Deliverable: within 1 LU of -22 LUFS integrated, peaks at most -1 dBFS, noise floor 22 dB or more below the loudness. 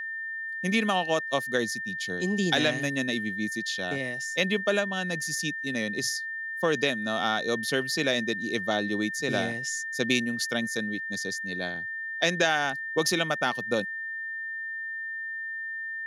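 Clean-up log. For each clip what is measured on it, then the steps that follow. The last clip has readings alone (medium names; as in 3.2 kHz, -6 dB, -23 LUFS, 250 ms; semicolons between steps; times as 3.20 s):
steady tone 1.8 kHz; tone level -32 dBFS; loudness -28.0 LUFS; peak level -9.0 dBFS; loudness target -22.0 LUFS
-> band-stop 1.8 kHz, Q 30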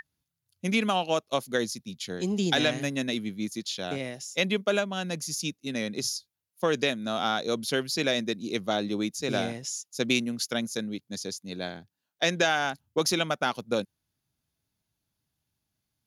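steady tone not found; loudness -29.0 LUFS; peak level -9.5 dBFS; loudness target -22.0 LUFS
-> trim +7 dB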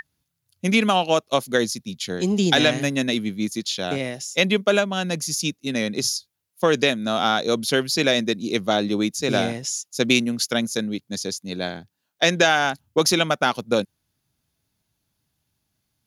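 loudness -22.0 LUFS; peak level -2.5 dBFS; noise floor -76 dBFS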